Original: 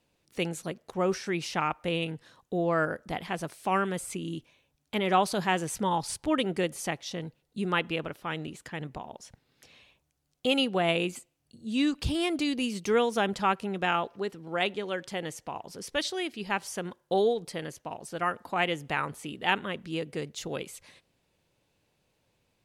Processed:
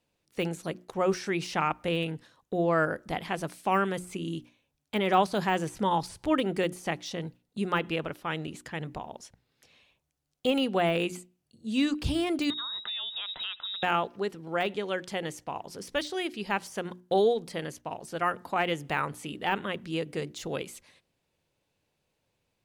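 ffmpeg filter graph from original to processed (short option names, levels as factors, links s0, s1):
-filter_complex "[0:a]asettb=1/sr,asplit=3[s0][s1][s2];[s0]atrim=end=12.504[s3];[s1]atrim=start=12.5:end=13.83,asetpts=PTS-STARTPTS,afade=t=in:d=0.004:c=qsin,afade=t=out:st=1.326:d=0.004:c=qsin,bandreject=f=1700:w=5.6,acompressor=threshold=0.0251:ratio=12:attack=3.2:release=140:knee=1:detection=peak,lowpass=f=3400:t=q:w=0.5098,lowpass=f=3400:t=q:w=0.6013,lowpass=f=3400:t=q:w=0.9,lowpass=f=3400:t=q:w=2.563,afreqshift=-4000[s4];[s2]atrim=start=13.826[s5];[s3][s4]acrossfade=d=0.004:c1=hsin:c2=qsin[s6];[s6][s5]acrossfade=d=0.004:c1=qsin:c2=hsin,agate=range=0.501:threshold=0.00398:ratio=16:detection=peak,deesser=0.95,bandreject=f=60:t=h:w=6,bandreject=f=120:t=h:w=6,bandreject=f=180:t=h:w=6,bandreject=f=240:t=h:w=6,bandreject=f=300:t=h:w=6,bandreject=f=360:t=h:w=6,volume=1.19"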